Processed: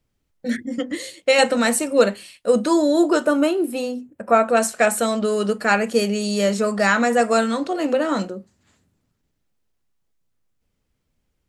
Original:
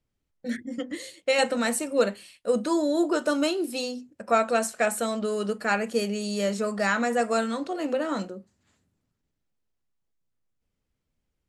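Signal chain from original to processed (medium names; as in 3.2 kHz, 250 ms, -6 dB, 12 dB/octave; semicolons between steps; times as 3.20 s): 3.25–4.57 s: peaking EQ 5.1 kHz -13.5 dB 1.5 oct; trim +7 dB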